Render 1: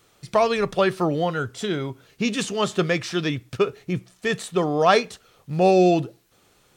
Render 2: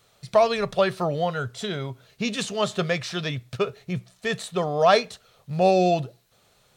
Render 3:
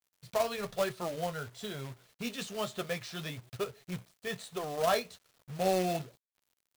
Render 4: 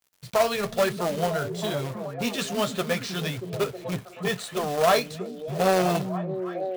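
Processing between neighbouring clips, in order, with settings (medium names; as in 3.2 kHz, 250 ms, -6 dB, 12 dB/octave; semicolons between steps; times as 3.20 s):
graphic EQ with 31 bands 125 Hz +4 dB, 315 Hz -12 dB, 630 Hz +6 dB, 4 kHz +5 dB; trim -2.5 dB
flange 1.1 Hz, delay 7.9 ms, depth 4.7 ms, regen -39%; companded quantiser 4-bit; trim -7.5 dB
in parallel at -11.5 dB: hard clipper -26 dBFS, distortion -12 dB; on the sum: repeats whose band climbs or falls 317 ms, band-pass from 200 Hz, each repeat 0.7 oct, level -3.5 dB; transformer saturation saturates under 1.2 kHz; trim +8 dB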